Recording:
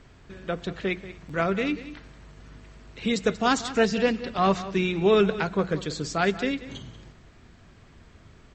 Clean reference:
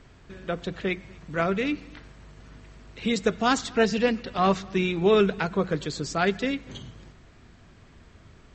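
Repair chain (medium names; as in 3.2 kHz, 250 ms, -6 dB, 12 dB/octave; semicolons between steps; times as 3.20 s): interpolate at 1.29 s, 4.3 ms; inverse comb 185 ms -15 dB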